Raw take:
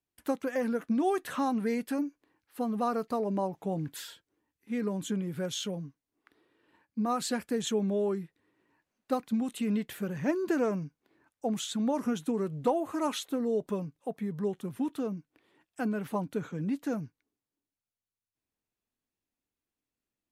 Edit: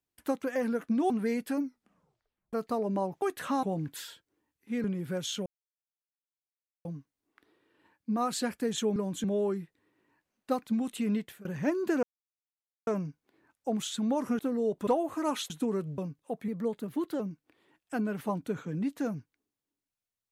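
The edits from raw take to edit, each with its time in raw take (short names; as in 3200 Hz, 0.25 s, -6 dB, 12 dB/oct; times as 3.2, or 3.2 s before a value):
1.1–1.51 move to 3.63
2.01 tape stop 0.93 s
4.84–5.12 move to 7.85
5.74 insert silence 1.39 s
9.76–10.06 fade out, to -23 dB
10.64 insert silence 0.84 s
12.16–12.64 swap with 13.27–13.75
14.25–15.06 speed 113%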